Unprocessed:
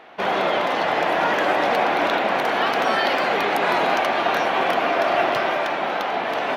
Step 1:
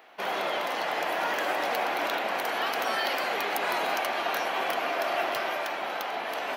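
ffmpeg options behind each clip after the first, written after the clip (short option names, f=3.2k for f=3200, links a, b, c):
-af "aemphasis=mode=production:type=bsi,bandreject=f=3.6k:w=23,volume=-8.5dB"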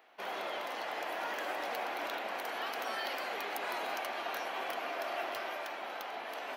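-af "equalizer=f=160:t=o:w=0.26:g=-12.5,volume=-9dB"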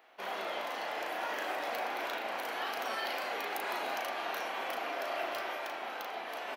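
-filter_complex "[0:a]asplit=2[a][b];[b]adelay=36,volume=-5dB[c];[a][c]amix=inputs=2:normalize=0"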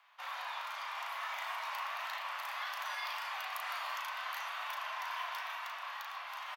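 -af "afreqshift=350,aecho=1:1:766:0.299,volume=-4dB"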